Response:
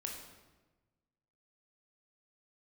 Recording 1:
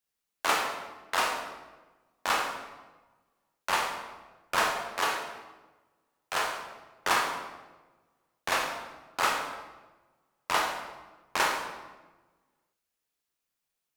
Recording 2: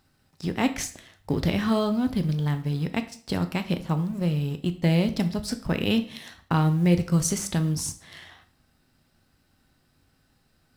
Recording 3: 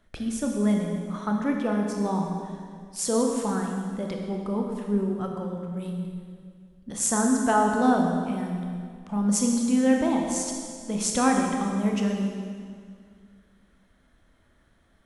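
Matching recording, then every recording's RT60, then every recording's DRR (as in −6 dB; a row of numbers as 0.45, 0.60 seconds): 1; 1.2, 0.50, 2.0 seconds; 0.0, 8.0, 1.0 decibels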